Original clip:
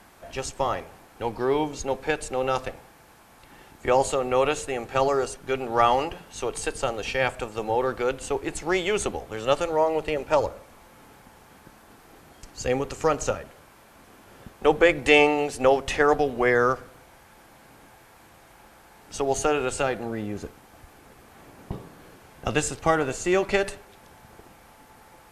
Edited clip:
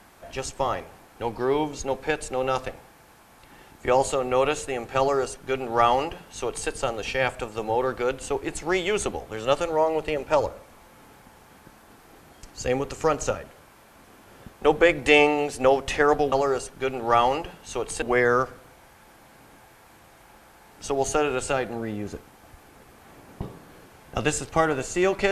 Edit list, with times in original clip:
4.99–6.69 copy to 16.32

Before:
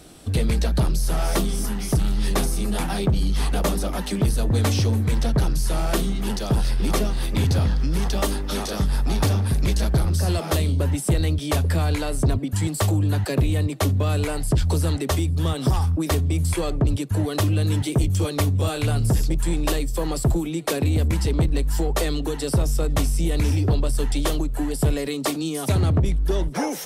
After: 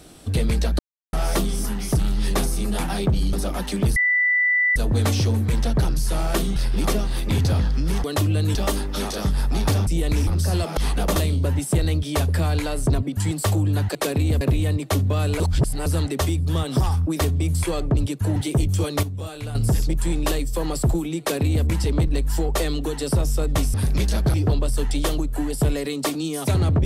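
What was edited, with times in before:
0.79–1.13 mute
3.33–3.72 move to 10.52
4.35 add tone 1980 Hz -16 dBFS 0.80 s
6.15–6.62 cut
9.42–10.02 swap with 23.15–23.55
14.3–14.76 reverse
17.26–17.77 move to 8.1
18.44–18.96 gain -9 dB
20.61–21.07 copy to 13.31

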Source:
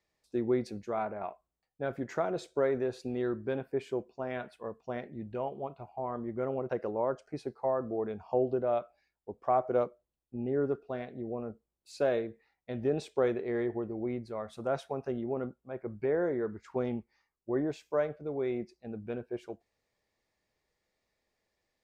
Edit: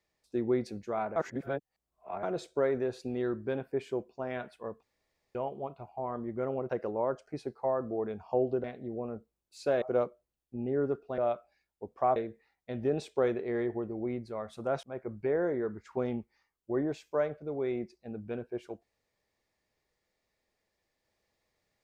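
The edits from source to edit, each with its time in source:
1.16–2.23 reverse
4.83–5.35 room tone
8.64–9.62 swap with 10.98–12.16
14.83–15.62 cut

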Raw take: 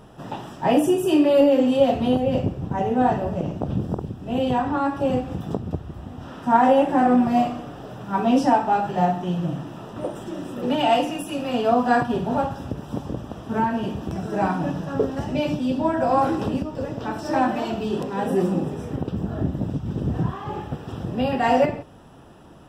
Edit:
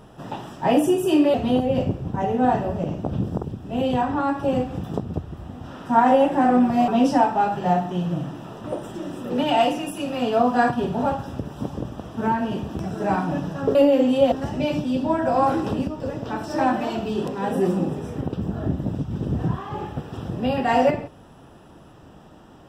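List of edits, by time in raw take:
1.34–1.91 move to 15.07
7.45–8.2 cut

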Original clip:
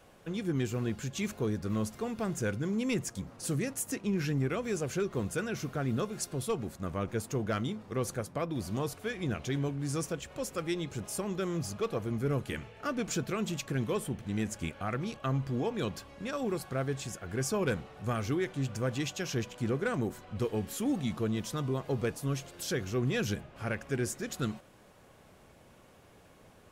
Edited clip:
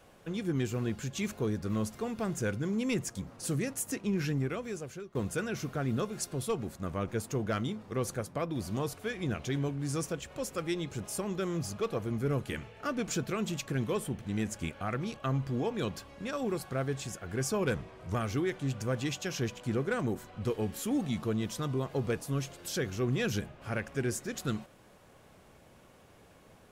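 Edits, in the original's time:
4.27–5.15 fade out, to -18.5 dB
17.75–18.09 speed 86%

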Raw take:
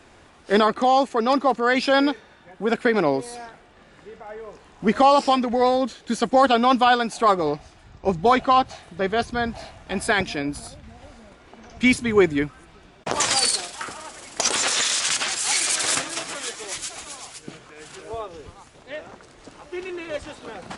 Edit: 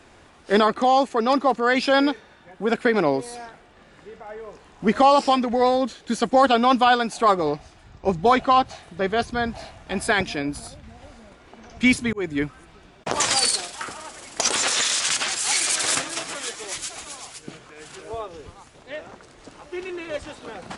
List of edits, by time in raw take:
12.13–12.44 fade in linear

